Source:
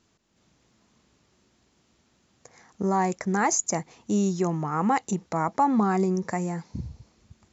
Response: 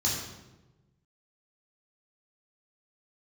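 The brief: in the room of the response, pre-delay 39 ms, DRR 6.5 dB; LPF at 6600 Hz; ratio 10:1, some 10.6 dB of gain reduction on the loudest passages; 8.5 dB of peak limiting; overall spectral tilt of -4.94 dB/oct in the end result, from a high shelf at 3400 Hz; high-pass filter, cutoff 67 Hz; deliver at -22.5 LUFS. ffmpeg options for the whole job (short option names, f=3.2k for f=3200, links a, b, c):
-filter_complex "[0:a]highpass=67,lowpass=6.6k,highshelf=f=3.4k:g=-3,acompressor=threshold=-29dB:ratio=10,alimiter=level_in=2.5dB:limit=-24dB:level=0:latency=1,volume=-2.5dB,asplit=2[a][b];[1:a]atrim=start_sample=2205,adelay=39[c];[b][c]afir=irnorm=-1:irlink=0,volume=-14.5dB[d];[a][d]amix=inputs=2:normalize=0,volume=12.5dB"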